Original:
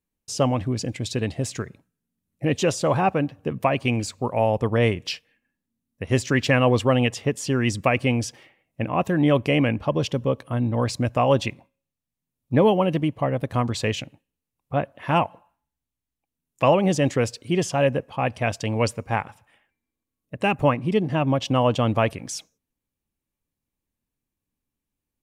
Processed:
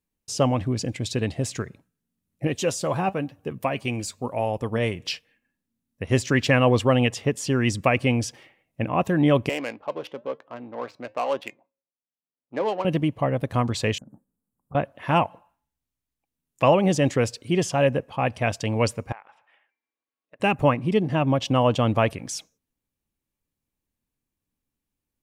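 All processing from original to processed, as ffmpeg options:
ffmpeg -i in.wav -filter_complex "[0:a]asettb=1/sr,asplit=3[link_01][link_02][link_03];[link_01]atrim=end=2.474[link_04];[link_02]atrim=start=2.47:end=4.99,asetpts=PTS-STARTPTS,afade=type=in:duration=0.004:curve=qsin,afade=type=out:start_time=2.516:duration=0.004:curve=qsin,highshelf=frequency=7400:gain=9.5,flanger=delay=2.3:depth=3.9:regen=73:speed=1:shape=triangular[link_05];[link_03]atrim=start=4.986[link_06];[link_04][link_05]acrossfade=duration=0.004:curve1=hsin:curve2=qsin[link_07];[link_07][link_06]acrossfade=duration=0.004:curve1=qsin:curve2=hsin,asettb=1/sr,asplit=3[link_08][link_09][link_10];[link_08]atrim=end=9.494[link_11];[link_09]atrim=start=9.49:end=12.85,asetpts=PTS-STARTPTS,afade=type=in:duration=0.004:curve=qsin,afade=type=out:start_time=3.356:duration=0.004:curve=qsin,adynamicsmooth=sensitivity=2:basefreq=1100,flanger=delay=3:depth=2:regen=-86:speed=1:shape=sinusoidal,highpass=440[link_12];[link_10]atrim=start=12.846[link_13];[link_11][link_12]acrossfade=duration=0.004:curve1=hsin:curve2=qsin[link_14];[link_14][link_13]acrossfade=duration=0.004:curve1=qsin:curve2=hsin,asettb=1/sr,asplit=3[link_15][link_16][link_17];[link_15]atrim=end=13.984[link_18];[link_16]atrim=start=13.98:end=14.75,asetpts=PTS-STARTPTS,afade=type=in:duration=0.004:curve=qsin,afade=type=out:start_time=0.766:duration=0.004:curve=qsin,equalizer=frequency=210:width_type=o:width=0.65:gain=12.5,acompressor=threshold=-40dB:ratio=16:attack=3.2:release=140:knee=1:detection=peak,asuperstop=centerf=3400:order=12:qfactor=0.59[link_19];[link_17]atrim=start=14.746[link_20];[link_18][link_19]acrossfade=duration=0.004:curve1=hsin:curve2=qsin[link_21];[link_21][link_20]acrossfade=duration=0.004:curve1=qsin:curve2=hsin,asettb=1/sr,asplit=3[link_22][link_23][link_24];[link_22]atrim=end=19.124[link_25];[link_23]atrim=start=19.12:end=20.4,asetpts=PTS-STARTPTS,afade=type=in:duration=0.004:curve=qsin,afade=type=out:start_time=1.276:duration=0.004:curve=qsin,highpass=590,lowpass=3100,acompressor=threshold=-46dB:ratio=3:attack=3.2:release=140:knee=1:detection=peak[link_26];[link_24]atrim=start=20.396[link_27];[link_25][link_26]acrossfade=duration=0.004:curve1=hsin:curve2=qsin[link_28];[link_28][link_27]acrossfade=duration=0.004:curve1=qsin:curve2=hsin" out.wav

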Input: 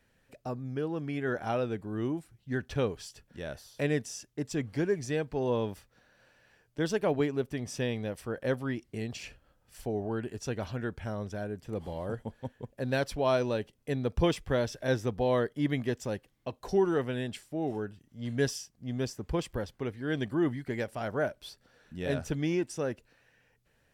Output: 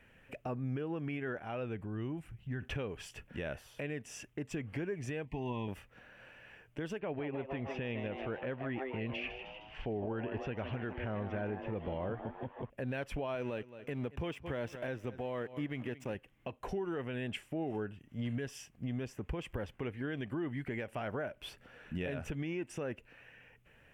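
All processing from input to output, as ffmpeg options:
ffmpeg -i in.wav -filter_complex "[0:a]asettb=1/sr,asplit=3[link_01][link_02][link_03];[link_01]atrim=end=1.384[link_04];[link_02]atrim=start=1.38:end=2.62,asetpts=PTS-STARTPTS,afade=type=in:duration=0.004:curve=qsin,afade=type=out:start_time=1.236:duration=0.004:curve=qsin,asubboost=boost=6:cutoff=190,acompressor=threshold=-51dB:ratio=2:attack=3.2:release=140:knee=1:detection=peak[link_05];[link_03]atrim=start=2.616[link_06];[link_04][link_05]acrossfade=duration=0.004:curve1=hsin:curve2=qsin[link_07];[link_07][link_06]acrossfade=duration=0.004:curve1=qsin:curve2=hsin,asettb=1/sr,asplit=3[link_08][link_09][link_10];[link_08]atrim=end=5.254[link_11];[link_09]atrim=start=5.25:end=5.68,asetpts=PTS-STARTPTS,afade=type=in:duration=0.004:curve=qsin,afade=type=out:start_time=0.426:duration=0.004:curve=qsin,asuperstop=centerf=1400:order=20:qfactor=2.1,equalizer=frequency=510:width_type=o:width=0.56:gain=-15[link_12];[link_10]atrim=start=5.676[link_13];[link_11][link_12]acrossfade=duration=0.004:curve1=hsin:curve2=qsin[link_14];[link_14][link_13]acrossfade=duration=0.004:curve1=qsin:curve2=hsin,asettb=1/sr,asplit=3[link_15][link_16][link_17];[link_15]atrim=end=7.004[link_18];[link_16]atrim=start=7:end=12.7,asetpts=PTS-STARTPTS,afade=type=in:duration=0.004:curve=qsin,afade=type=out:start_time=5.696:duration=0.004:curve=qsin,lowpass=frequency=3900:width=0.5412,lowpass=frequency=3900:width=1.3066,asplit=6[link_19][link_20][link_21][link_22][link_23][link_24];[link_20]adelay=154,afreqshift=130,volume=-11dB[link_25];[link_21]adelay=308,afreqshift=260,volume=-16.8dB[link_26];[link_22]adelay=462,afreqshift=390,volume=-22.7dB[link_27];[link_23]adelay=616,afreqshift=520,volume=-28.5dB[link_28];[link_24]adelay=770,afreqshift=650,volume=-34.4dB[link_29];[link_19][link_25][link_26][link_27][link_28][link_29]amix=inputs=6:normalize=0,atrim=end_sample=251370[link_30];[link_17]atrim=start=12.696[link_31];[link_18][link_30]acrossfade=duration=0.004:curve1=hsin:curve2=qsin[link_32];[link_32][link_31]acrossfade=duration=0.004:curve1=qsin:curve2=hsin,asettb=1/sr,asplit=3[link_33][link_34][link_35];[link_33]atrim=end=13.354[link_36];[link_34]atrim=start=13.35:end=16.15,asetpts=PTS-STARTPTS,afade=type=in:duration=0.004:curve=qsin,afade=type=out:start_time=2.796:duration=0.004:curve=qsin,highpass=80,aeval=exprs='sgn(val(0))*max(abs(val(0))-0.00398,0)':channel_layout=same,aecho=1:1:220|440:0.0794|0.0207,atrim=end_sample=123480[link_37];[link_35]atrim=start=16.146[link_38];[link_36][link_37]acrossfade=duration=0.004:curve1=hsin:curve2=qsin[link_39];[link_39][link_38]acrossfade=duration=0.004:curve1=qsin:curve2=hsin,highshelf=frequency=3400:width_type=q:width=3:gain=-7.5,acompressor=threshold=-30dB:ratio=6,alimiter=level_in=11dB:limit=-24dB:level=0:latency=1:release=322,volume=-11dB,volume=6dB" out.wav

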